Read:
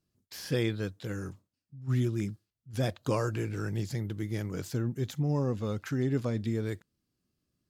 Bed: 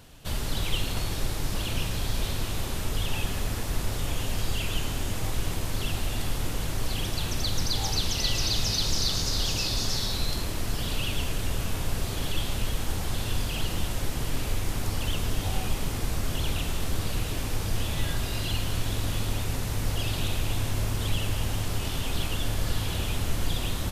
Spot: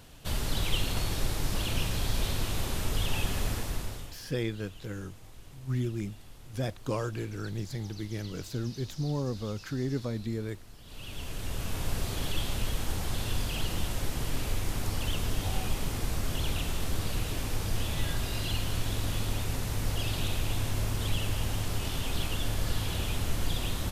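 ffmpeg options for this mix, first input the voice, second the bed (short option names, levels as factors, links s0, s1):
-filter_complex "[0:a]adelay=3800,volume=0.75[s0];[1:a]volume=7.94,afade=t=out:st=3.48:d=0.69:silence=0.0944061,afade=t=in:st=10.84:d=1.05:silence=0.112202[s1];[s0][s1]amix=inputs=2:normalize=0"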